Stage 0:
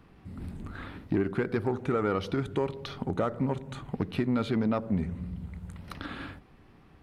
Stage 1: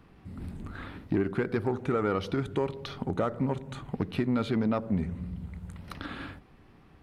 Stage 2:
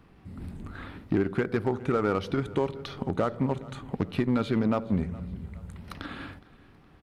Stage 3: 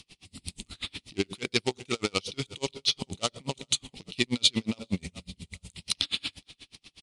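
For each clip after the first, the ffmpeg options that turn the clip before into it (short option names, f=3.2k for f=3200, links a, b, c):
-af anull
-filter_complex "[0:a]asplit=2[a][b];[b]acrusher=bits=3:mix=0:aa=0.5,volume=-11.5dB[c];[a][c]amix=inputs=2:normalize=0,aecho=1:1:416|832|1248:0.0891|0.0348|0.0136"
-af "aexciter=amount=11.1:drive=9.1:freq=2.5k,aresample=22050,aresample=44100,aeval=exprs='val(0)*pow(10,-37*(0.5-0.5*cos(2*PI*8.3*n/s))/20)':c=same"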